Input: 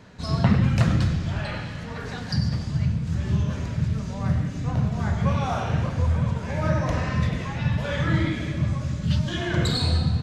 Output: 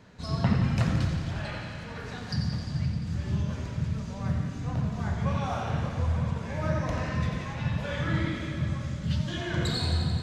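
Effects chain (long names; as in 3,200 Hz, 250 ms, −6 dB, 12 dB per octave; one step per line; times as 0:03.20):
feedback echo with a high-pass in the loop 87 ms, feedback 82%, high-pass 160 Hz, level −10 dB
level −5.5 dB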